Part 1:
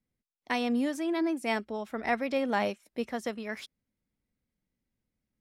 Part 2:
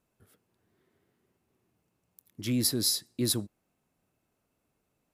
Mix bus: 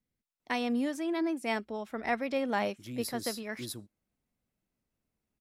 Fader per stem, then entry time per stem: -2.0 dB, -12.5 dB; 0.00 s, 0.40 s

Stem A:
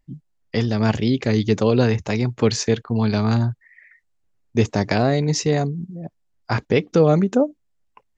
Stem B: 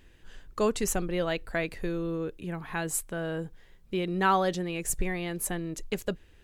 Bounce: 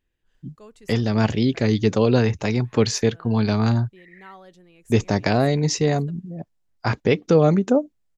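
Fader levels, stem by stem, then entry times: -0.5 dB, -20.0 dB; 0.35 s, 0.00 s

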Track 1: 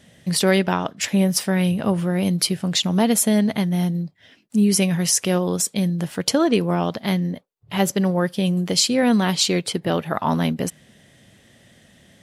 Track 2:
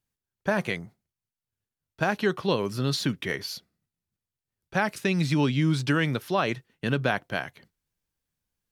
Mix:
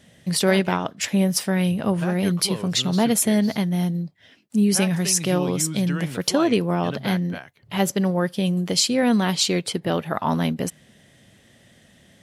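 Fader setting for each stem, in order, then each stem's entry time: -1.5 dB, -7.0 dB; 0.00 s, 0.00 s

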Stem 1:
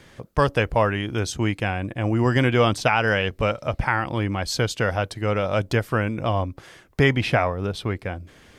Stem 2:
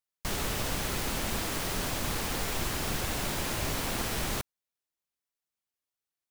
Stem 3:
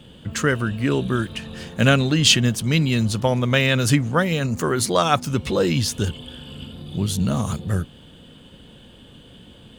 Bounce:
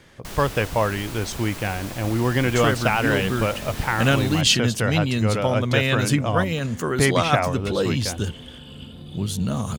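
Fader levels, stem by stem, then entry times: -1.5 dB, -3.5 dB, -3.0 dB; 0.00 s, 0.00 s, 2.20 s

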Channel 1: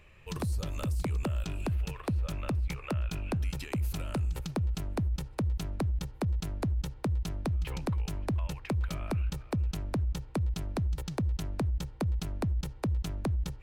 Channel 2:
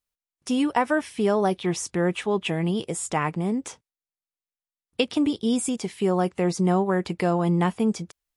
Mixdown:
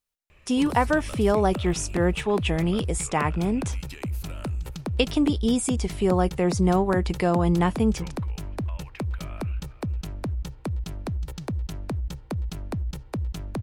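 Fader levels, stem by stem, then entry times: +1.0 dB, +0.5 dB; 0.30 s, 0.00 s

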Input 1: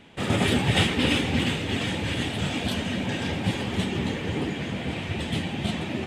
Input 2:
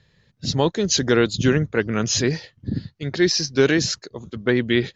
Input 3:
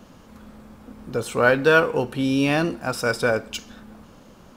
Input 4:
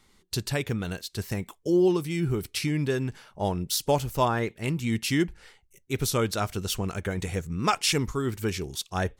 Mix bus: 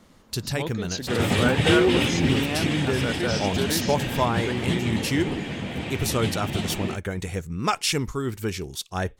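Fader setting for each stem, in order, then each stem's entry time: -0.5 dB, -12.0 dB, -8.0 dB, +0.5 dB; 0.90 s, 0.00 s, 0.00 s, 0.00 s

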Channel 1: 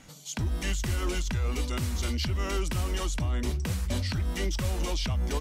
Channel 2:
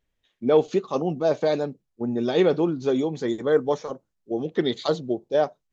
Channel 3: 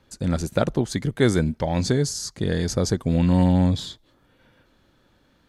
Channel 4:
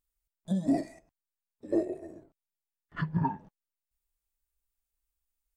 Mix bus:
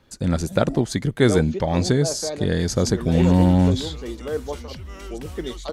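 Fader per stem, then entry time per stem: -7.5 dB, -7.0 dB, +2.0 dB, -7.0 dB; 2.50 s, 0.80 s, 0.00 s, 0.00 s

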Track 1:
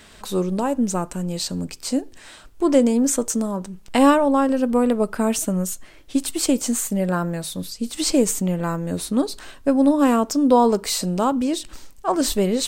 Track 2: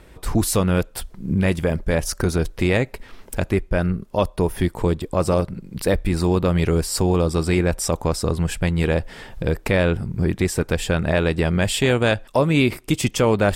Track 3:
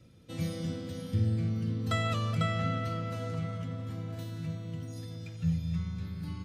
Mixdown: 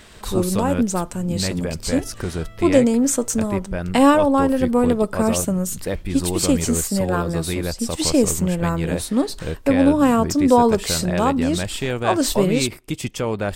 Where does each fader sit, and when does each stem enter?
+1.0 dB, -6.0 dB, -13.5 dB; 0.00 s, 0.00 s, 0.00 s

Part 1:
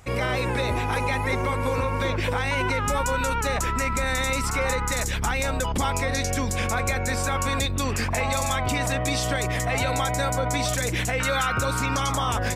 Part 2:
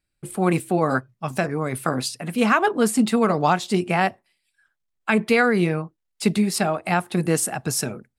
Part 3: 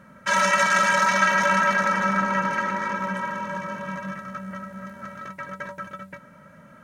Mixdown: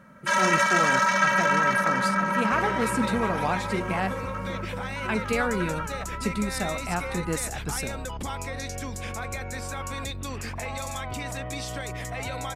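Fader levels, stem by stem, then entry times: -8.5 dB, -8.5 dB, -2.0 dB; 2.45 s, 0.00 s, 0.00 s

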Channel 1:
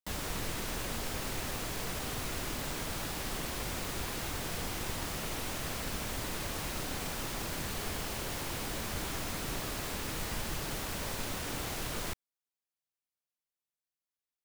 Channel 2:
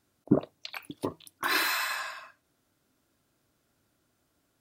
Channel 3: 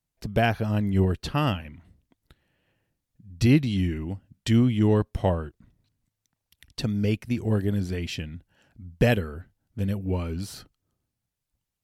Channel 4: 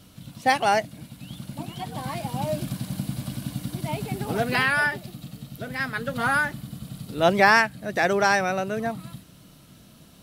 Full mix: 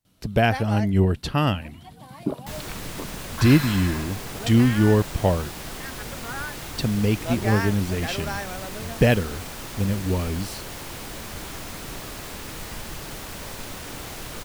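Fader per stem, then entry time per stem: +1.5 dB, -3.5 dB, +3.0 dB, -11.5 dB; 2.40 s, 1.95 s, 0.00 s, 0.05 s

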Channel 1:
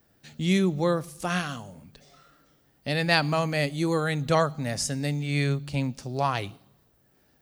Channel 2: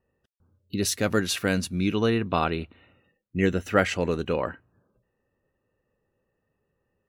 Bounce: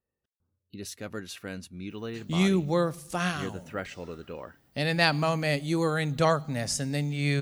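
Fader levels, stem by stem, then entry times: -1.0 dB, -13.5 dB; 1.90 s, 0.00 s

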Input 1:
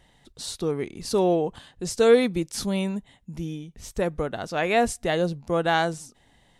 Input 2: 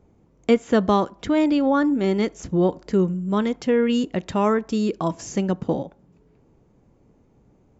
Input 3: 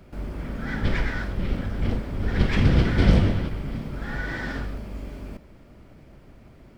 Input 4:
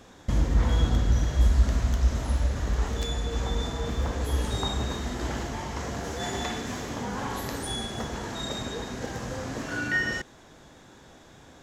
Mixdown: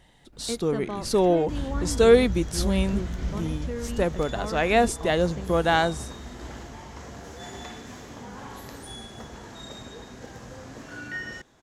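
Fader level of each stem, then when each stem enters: +1.0 dB, -15.0 dB, -18.0 dB, -8.0 dB; 0.00 s, 0.00 s, 0.20 s, 1.20 s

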